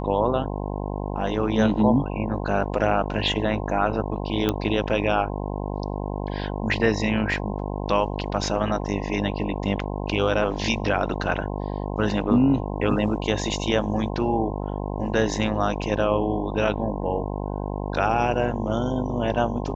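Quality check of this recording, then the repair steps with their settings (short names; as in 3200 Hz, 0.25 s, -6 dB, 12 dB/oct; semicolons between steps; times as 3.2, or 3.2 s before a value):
buzz 50 Hz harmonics 21 -29 dBFS
4.49 pop -9 dBFS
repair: de-click; de-hum 50 Hz, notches 21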